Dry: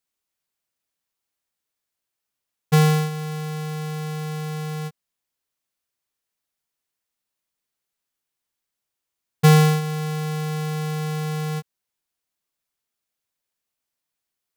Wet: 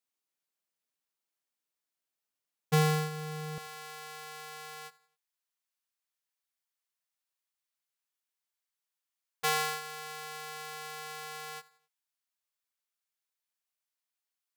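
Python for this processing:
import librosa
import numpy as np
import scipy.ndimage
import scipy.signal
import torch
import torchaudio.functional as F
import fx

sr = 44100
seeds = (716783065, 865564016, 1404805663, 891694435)

y = fx.highpass(x, sr, hz=fx.steps((0.0, 170.0), (3.58, 780.0)), slope=12)
y = fx.echo_feedback(y, sr, ms=88, feedback_pct=46, wet_db=-21.0)
y = y * librosa.db_to_amplitude(-6.5)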